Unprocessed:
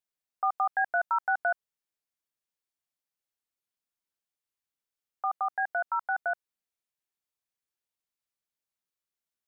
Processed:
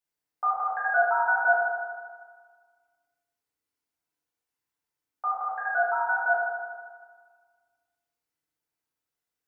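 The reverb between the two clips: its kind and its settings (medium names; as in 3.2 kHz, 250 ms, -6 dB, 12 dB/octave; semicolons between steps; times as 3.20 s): FDN reverb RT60 1.6 s, low-frequency decay 0.95×, high-frequency decay 0.3×, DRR -8.5 dB; trim -3.5 dB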